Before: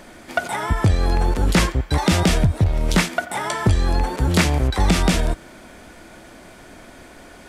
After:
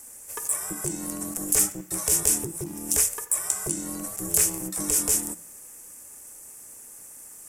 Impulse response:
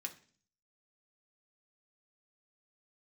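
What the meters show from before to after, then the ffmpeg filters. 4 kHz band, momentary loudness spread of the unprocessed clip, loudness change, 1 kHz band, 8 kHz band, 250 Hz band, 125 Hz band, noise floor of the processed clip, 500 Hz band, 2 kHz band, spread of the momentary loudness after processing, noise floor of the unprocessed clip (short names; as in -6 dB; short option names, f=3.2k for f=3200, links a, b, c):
-11.0 dB, 7 LU, -4.0 dB, -17.0 dB, +9.5 dB, -12.5 dB, -22.0 dB, -46 dBFS, -12.0 dB, -16.0 dB, 21 LU, -44 dBFS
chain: -filter_complex "[0:a]aexciter=amount=15.4:drive=8.9:freq=6.3k,aeval=exprs='val(0)*sin(2*PI*250*n/s)':c=same,asplit=2[a][b];[1:a]atrim=start_sample=2205[c];[b][c]afir=irnorm=-1:irlink=0,volume=-3dB[d];[a][d]amix=inputs=2:normalize=0,volume=-16.5dB"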